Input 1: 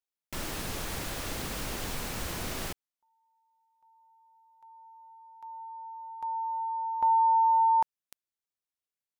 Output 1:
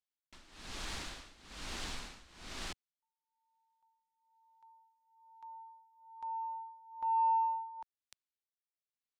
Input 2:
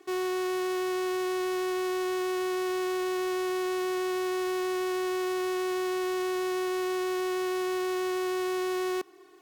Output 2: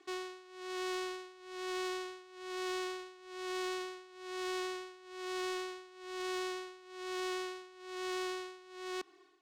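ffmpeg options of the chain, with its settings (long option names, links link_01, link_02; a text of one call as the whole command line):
ffmpeg -i in.wav -af "tremolo=f=1.1:d=0.9,equalizer=frequency=125:width_type=o:width=1:gain=-10,equalizer=frequency=500:width_type=o:width=1:gain=-7,equalizer=frequency=4000:width_type=o:width=1:gain=5,equalizer=frequency=8000:width_type=o:width=1:gain=6,adynamicsmooth=sensitivity=2.5:basefreq=5000,volume=-4dB" out.wav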